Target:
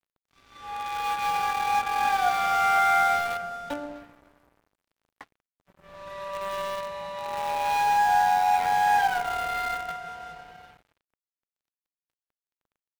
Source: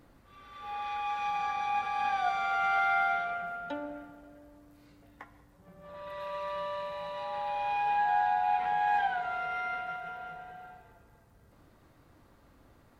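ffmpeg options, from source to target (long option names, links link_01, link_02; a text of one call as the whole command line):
ffmpeg -i in.wav -filter_complex "[0:a]asplit=2[link_01][link_02];[link_02]acrusher=bits=4:mix=0:aa=0.000001,volume=-11.5dB[link_03];[link_01][link_03]amix=inputs=2:normalize=0,acontrast=55,aeval=exprs='sgn(val(0))*max(abs(val(0))-0.00562,0)':channel_layout=same,volume=-1.5dB" out.wav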